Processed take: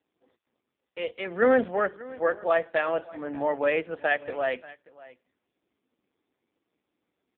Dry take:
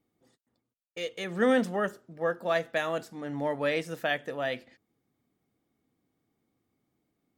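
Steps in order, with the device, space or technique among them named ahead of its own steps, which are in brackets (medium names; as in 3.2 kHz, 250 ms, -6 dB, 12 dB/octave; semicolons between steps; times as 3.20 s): satellite phone (band-pass 320–3000 Hz; delay 585 ms -20.5 dB; trim +5.5 dB; AMR-NB 5.15 kbps 8 kHz)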